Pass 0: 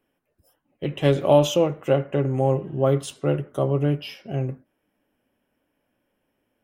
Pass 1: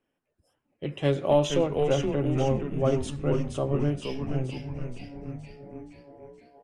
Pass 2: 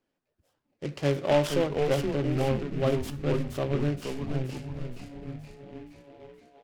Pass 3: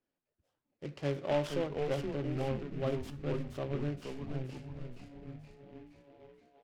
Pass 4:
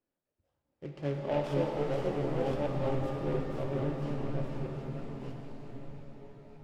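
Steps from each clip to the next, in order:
steep low-pass 10 kHz 36 dB/octave; on a send: frequency-shifting echo 472 ms, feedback 57%, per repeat -140 Hz, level -4.5 dB; on the sum: trim -5.5 dB
delay time shaken by noise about 1.9 kHz, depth 0.049 ms; trim -1.5 dB
treble shelf 7.6 kHz -9 dB; trim -8 dB
chunks repeated in reverse 667 ms, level -3.5 dB; treble shelf 2.3 kHz -9 dB; pitch-shifted reverb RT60 3 s, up +7 st, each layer -8 dB, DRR 2.5 dB

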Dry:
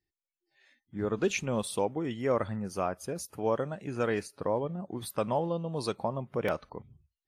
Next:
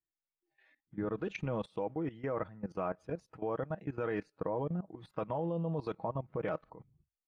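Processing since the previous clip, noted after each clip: low-pass 2.2 kHz 12 dB/octave; comb 6.3 ms, depth 47%; level held to a coarse grid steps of 17 dB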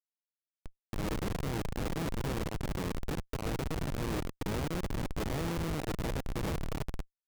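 spectral levelling over time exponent 0.2; in parallel at +0.5 dB: peak limiter -19.5 dBFS, peak gain reduction 8 dB; on the sum: Schmitt trigger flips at -20.5 dBFS; trim -8 dB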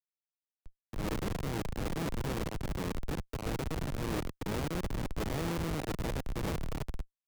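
three bands expanded up and down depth 70%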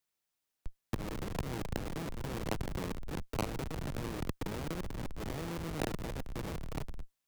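compressor with a negative ratio -41 dBFS, ratio -1; trim +3.5 dB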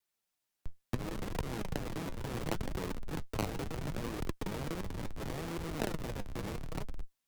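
vibrato 0.87 Hz 15 cents; flange 0.71 Hz, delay 1.9 ms, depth 9.6 ms, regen +61%; trim +4.5 dB

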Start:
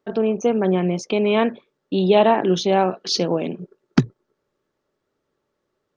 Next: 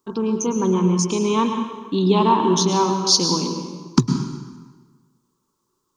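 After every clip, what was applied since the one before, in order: FFT filter 370 Hz 0 dB, 690 Hz -19 dB, 990 Hz +11 dB, 1.8 kHz -13 dB, 7 kHz +14 dB; plate-style reverb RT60 1.4 s, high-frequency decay 0.8×, pre-delay 95 ms, DRR 5 dB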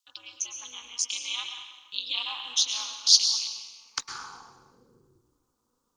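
high-pass sweep 3.1 kHz -> 96 Hz, 3.76–5.61 s; ring modulator 120 Hz; trim -1.5 dB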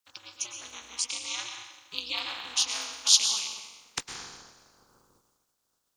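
spectral peaks clipped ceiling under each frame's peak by 21 dB; trim -1.5 dB

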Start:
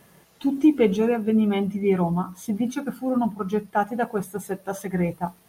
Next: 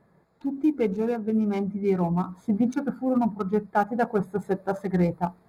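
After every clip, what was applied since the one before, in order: local Wiener filter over 15 samples; dynamic bell 3.1 kHz, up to -6 dB, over -57 dBFS, Q 4.1; gain riding within 5 dB 0.5 s; trim -1.5 dB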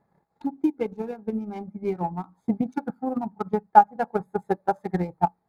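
peaking EQ 830 Hz +12.5 dB 0.2 oct; transient shaper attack +11 dB, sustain -8 dB; trim -9 dB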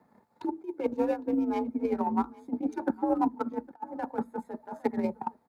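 compressor with a negative ratio -28 dBFS, ratio -0.5; frequency shift +50 Hz; delay 808 ms -22 dB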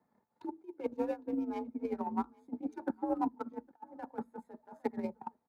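upward expansion 1.5:1, over -36 dBFS; trim -5.5 dB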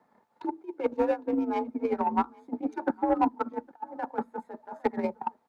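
overdrive pedal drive 12 dB, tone 2.4 kHz, clips at -19 dBFS; trim +7 dB

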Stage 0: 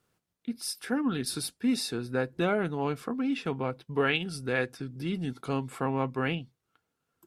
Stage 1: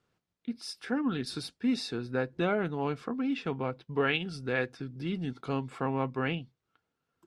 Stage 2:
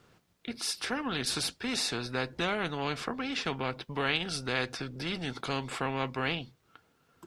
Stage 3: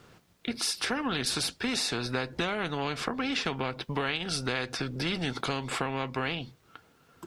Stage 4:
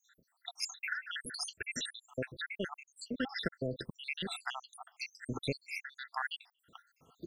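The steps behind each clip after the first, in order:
low-pass 5.4 kHz 12 dB/octave; trim -1.5 dB
dynamic bell 4.4 kHz, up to +4 dB, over -51 dBFS, Q 1.5; spectrum-flattening compressor 2:1
compression, threshold -33 dBFS, peak gain reduction 9.5 dB; trim +6.5 dB
random holes in the spectrogram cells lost 85%

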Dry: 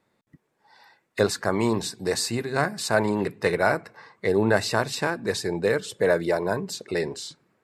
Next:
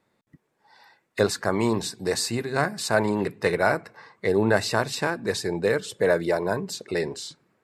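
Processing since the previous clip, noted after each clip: no audible change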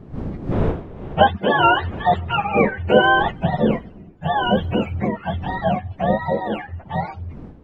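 spectrum inverted on a logarithmic axis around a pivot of 570 Hz; wind noise 220 Hz -36 dBFS; time-frequency box 0.52–3.31 s, 330–3900 Hz +7 dB; trim +4 dB

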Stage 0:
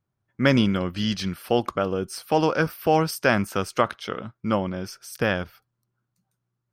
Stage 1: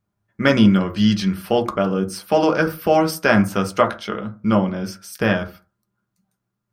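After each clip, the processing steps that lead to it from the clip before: reverberation RT60 0.35 s, pre-delay 5 ms, DRR 4 dB; trim +2.5 dB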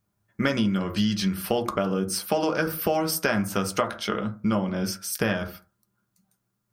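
treble shelf 5 kHz +8.5 dB; compression 6:1, threshold -21 dBFS, peak gain reduction 11.5 dB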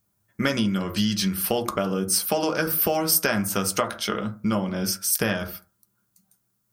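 treble shelf 5.5 kHz +11 dB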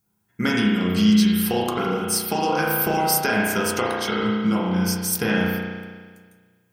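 comb of notches 590 Hz; spring tank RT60 1.6 s, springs 33 ms, chirp 70 ms, DRR -3.5 dB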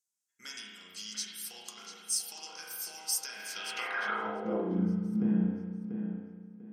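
fade out at the end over 1.89 s; tape echo 692 ms, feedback 28%, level -6 dB, low-pass 3.7 kHz; band-pass sweep 6.9 kHz -> 220 Hz, 3.35–4.89 s; trim -2.5 dB

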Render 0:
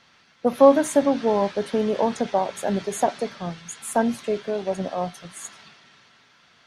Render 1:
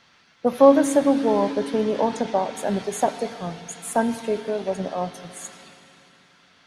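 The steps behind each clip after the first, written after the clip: FDN reverb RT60 2.8 s, low-frequency decay 1.4×, high-frequency decay 0.85×, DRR 13.5 dB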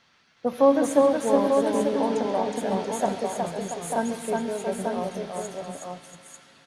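multi-tap echo 136/367/683/893 ms -16.5/-3/-9.5/-5 dB; trim -5 dB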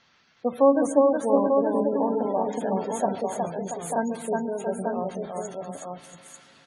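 spectral gate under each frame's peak -25 dB strong

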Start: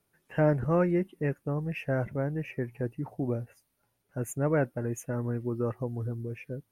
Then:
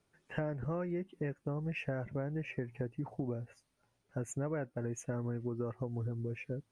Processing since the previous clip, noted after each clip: compression 12:1, threshold -33 dBFS, peak gain reduction 14 dB; low-pass 8.6 kHz 24 dB/octave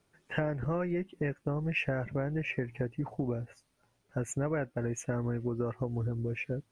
dynamic bell 2.5 kHz, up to +5 dB, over -57 dBFS, Q 0.84; AM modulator 190 Hz, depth 15%; trim +5.5 dB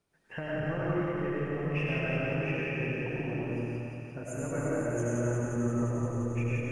chunks repeated in reverse 120 ms, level -4 dB; on a send: thinning echo 175 ms, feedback 84%, high-pass 1.2 kHz, level -3.5 dB; on the sum: algorithmic reverb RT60 2.8 s, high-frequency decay 0.4×, pre-delay 55 ms, DRR -5.5 dB; trim -7.5 dB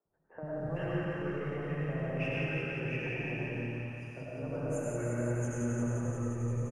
three bands offset in time mids, lows, highs 50/450 ms, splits 290/1200 Hz; trim -2 dB

